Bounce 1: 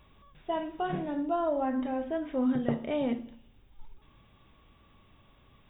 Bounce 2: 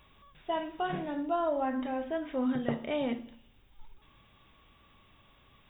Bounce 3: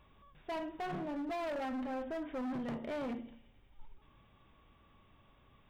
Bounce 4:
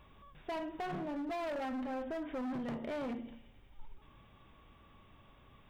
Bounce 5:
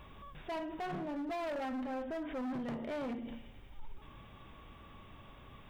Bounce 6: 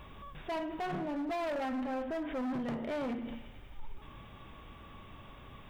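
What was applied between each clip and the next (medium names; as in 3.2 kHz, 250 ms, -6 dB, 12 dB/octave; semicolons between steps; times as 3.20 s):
tilt shelf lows -3.5 dB, about 830 Hz
treble shelf 2.4 kHz -11.5 dB; feedback echo behind a high-pass 91 ms, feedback 81%, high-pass 2.3 kHz, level -20.5 dB; overload inside the chain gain 34.5 dB; trim -1.5 dB
compression 2.5:1, threshold -43 dBFS, peak gain reduction 4 dB; trim +4 dB
peak limiter -42.5 dBFS, peak gain reduction 9.5 dB; trim +6.5 dB
feedback echo behind a band-pass 101 ms, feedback 79%, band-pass 1.6 kHz, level -18 dB; trim +3 dB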